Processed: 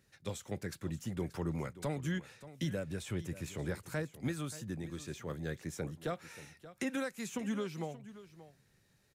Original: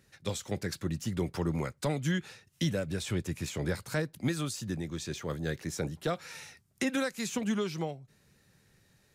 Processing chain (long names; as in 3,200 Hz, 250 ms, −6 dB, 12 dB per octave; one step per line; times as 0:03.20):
dynamic equaliser 4,600 Hz, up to −6 dB, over −55 dBFS, Q 1.4
single-tap delay 580 ms −15.5 dB
level −5.5 dB